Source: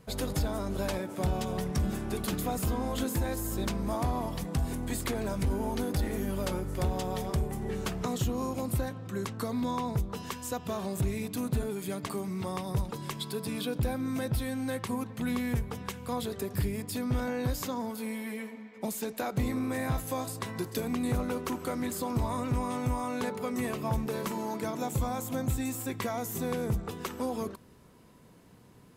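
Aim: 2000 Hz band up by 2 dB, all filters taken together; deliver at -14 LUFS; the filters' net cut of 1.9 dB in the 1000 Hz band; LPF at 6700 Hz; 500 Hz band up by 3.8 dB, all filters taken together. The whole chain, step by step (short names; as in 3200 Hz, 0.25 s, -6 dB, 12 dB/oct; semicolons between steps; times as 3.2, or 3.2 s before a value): LPF 6700 Hz; bell 500 Hz +5.5 dB; bell 1000 Hz -5.5 dB; bell 2000 Hz +4 dB; gain +18 dB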